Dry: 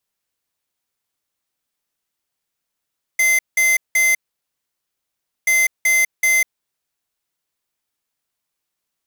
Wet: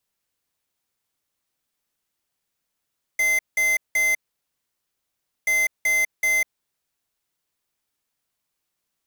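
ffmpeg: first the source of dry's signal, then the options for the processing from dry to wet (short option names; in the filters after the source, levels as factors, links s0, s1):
-f lavfi -i "aevalsrc='0.178*(2*lt(mod(2070*t,1),0.5)-1)*clip(min(mod(mod(t,2.28),0.38),0.2-mod(mod(t,2.28),0.38))/0.005,0,1)*lt(mod(t,2.28),1.14)':d=4.56:s=44100"
-filter_complex "[0:a]lowshelf=f=330:g=2.5,acrossover=split=1700[s0][s1];[s1]alimiter=limit=0.112:level=0:latency=1:release=44[s2];[s0][s2]amix=inputs=2:normalize=0"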